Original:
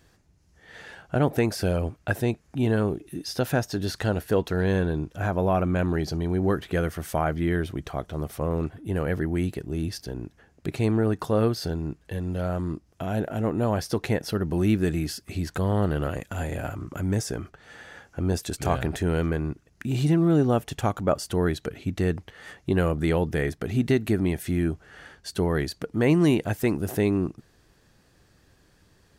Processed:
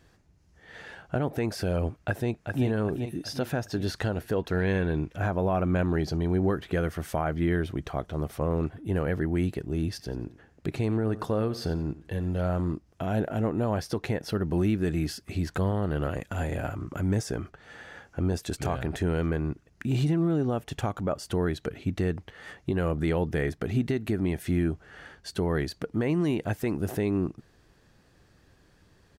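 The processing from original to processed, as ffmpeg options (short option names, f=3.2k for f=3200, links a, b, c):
-filter_complex "[0:a]asplit=2[a][b];[b]afade=t=in:st=1.99:d=0.01,afade=t=out:st=2.66:d=0.01,aecho=0:1:390|780|1170|1560|1950|2340:0.421697|0.210848|0.105424|0.0527121|0.026356|0.013178[c];[a][c]amix=inputs=2:normalize=0,asettb=1/sr,asplit=3[d][e][f];[d]atrim=end=4.534[g];[e]atrim=start=4.53:end=5.18,asetpts=PTS-STARTPTS,afade=t=in:d=0.004:c=qsin,afade=t=out:st=0.646:d=0.004:c=qsin,equalizer=f=2.2k:w=2.2:g=9[h];[f]atrim=start=5.176[i];[g][h]acrossfade=d=0.004:c1=hsin:c2=qsin[j];[j][i]acrossfade=d=0.004:c1=qsin:c2=hsin,asettb=1/sr,asplit=3[k][l][m];[k]atrim=end=9.904[n];[l]atrim=start=9.9:end=12.74,asetpts=PTS-STARTPTS,afade=t=in:d=0.004:c=qsin,afade=t=out:st=2.836:d=0.004:c=qsin,aecho=1:1:90|180|270:0.141|0.041|0.0119,atrim=end_sample=125244[o];[m]atrim=start=12.736[p];[n][o]acrossfade=d=0.004:c1=hsin:c2=qsin[q];[q][p]acrossfade=d=0.004:c1=qsin:c2=hsin,highshelf=f=5.4k:g=-6.5,alimiter=limit=-17dB:level=0:latency=1:release=200"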